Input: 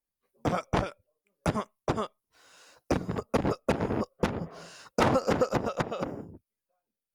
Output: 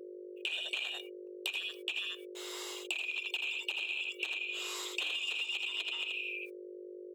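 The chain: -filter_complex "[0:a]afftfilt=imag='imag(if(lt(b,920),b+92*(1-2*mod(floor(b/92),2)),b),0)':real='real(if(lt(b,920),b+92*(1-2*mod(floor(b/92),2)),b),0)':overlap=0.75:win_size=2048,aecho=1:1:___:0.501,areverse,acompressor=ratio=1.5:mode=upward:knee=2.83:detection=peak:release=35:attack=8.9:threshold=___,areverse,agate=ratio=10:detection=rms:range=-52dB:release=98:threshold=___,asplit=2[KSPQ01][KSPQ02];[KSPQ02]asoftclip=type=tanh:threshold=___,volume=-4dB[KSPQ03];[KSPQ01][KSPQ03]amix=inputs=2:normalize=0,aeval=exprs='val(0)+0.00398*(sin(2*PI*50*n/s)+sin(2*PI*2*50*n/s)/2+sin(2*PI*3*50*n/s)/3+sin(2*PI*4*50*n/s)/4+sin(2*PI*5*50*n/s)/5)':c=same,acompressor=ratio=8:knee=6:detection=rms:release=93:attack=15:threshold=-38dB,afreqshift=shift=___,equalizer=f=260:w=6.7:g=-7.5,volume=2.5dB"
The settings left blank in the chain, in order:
80, -37dB, -54dB, -23.5dB, 310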